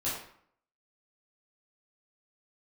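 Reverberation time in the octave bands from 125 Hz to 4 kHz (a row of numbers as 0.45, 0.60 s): 0.60, 0.65, 0.60, 0.65, 0.55, 0.45 s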